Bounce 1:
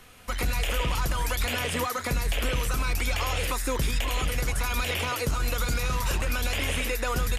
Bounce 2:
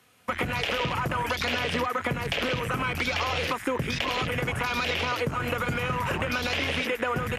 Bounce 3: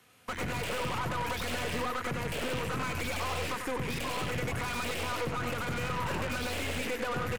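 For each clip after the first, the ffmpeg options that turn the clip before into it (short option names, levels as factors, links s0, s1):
-af "highpass=f=96:w=0.5412,highpass=f=96:w=1.3066,afwtdn=0.0158,acompressor=threshold=0.0251:ratio=6,volume=2.51"
-filter_complex "[0:a]aeval=exprs='(tanh(31.6*val(0)+0.4)-tanh(0.4))/31.6':c=same,acrossover=split=770|1000[s0][s1][s2];[s2]aeval=exprs='0.0211*(abs(mod(val(0)/0.0211+3,4)-2)-1)':c=same[s3];[s0][s1][s3]amix=inputs=3:normalize=0,aecho=1:1:94:0.447"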